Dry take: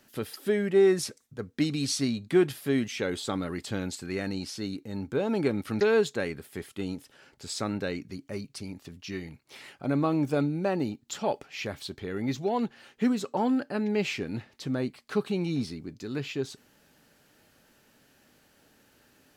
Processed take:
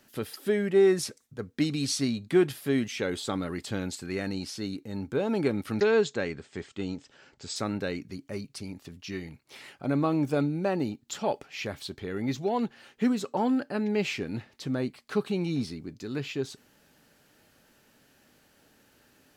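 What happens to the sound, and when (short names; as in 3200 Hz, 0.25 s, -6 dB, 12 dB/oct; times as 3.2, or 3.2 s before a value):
5.8–7.56 steep low-pass 8100 Hz 72 dB/oct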